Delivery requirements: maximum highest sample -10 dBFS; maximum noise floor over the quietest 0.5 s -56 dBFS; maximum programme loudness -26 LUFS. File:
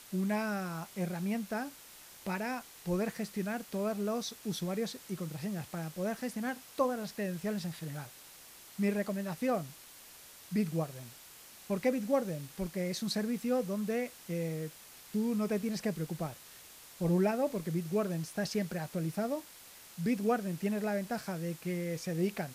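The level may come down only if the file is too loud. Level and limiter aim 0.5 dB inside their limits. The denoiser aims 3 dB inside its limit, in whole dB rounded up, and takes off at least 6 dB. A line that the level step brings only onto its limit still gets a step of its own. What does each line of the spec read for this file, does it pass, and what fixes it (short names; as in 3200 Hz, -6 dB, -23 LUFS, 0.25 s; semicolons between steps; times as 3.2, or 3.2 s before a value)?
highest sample -18.0 dBFS: OK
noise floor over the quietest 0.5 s -54 dBFS: fail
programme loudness -35.0 LUFS: OK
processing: denoiser 6 dB, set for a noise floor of -54 dBFS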